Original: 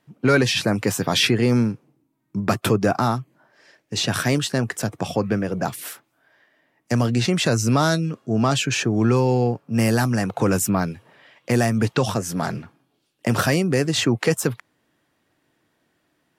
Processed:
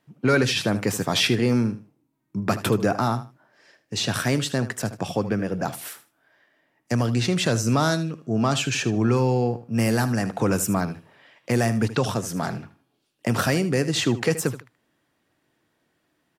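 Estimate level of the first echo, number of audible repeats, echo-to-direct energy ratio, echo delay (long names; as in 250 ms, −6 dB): −14.0 dB, 2, −14.0 dB, 77 ms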